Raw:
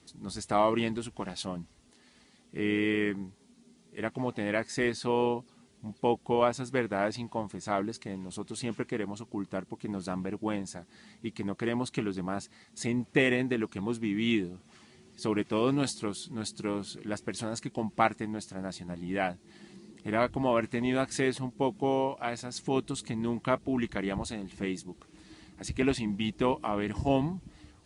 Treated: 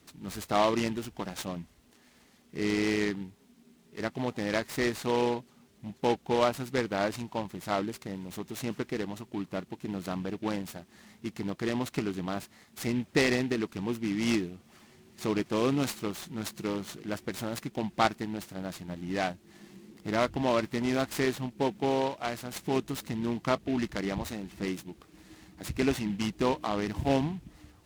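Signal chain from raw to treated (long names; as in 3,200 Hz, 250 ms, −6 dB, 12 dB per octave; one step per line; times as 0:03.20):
short delay modulated by noise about 2,300 Hz, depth 0.044 ms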